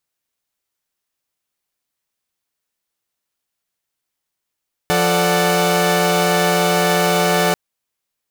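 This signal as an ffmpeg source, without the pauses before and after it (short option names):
-f lavfi -i "aevalsrc='0.141*((2*mod(174.61*t,1)-1)+(2*mod(440*t,1)-1)+(2*mod(587.33*t,1)-1)+(2*mod(739.99*t,1)-1))':d=2.64:s=44100"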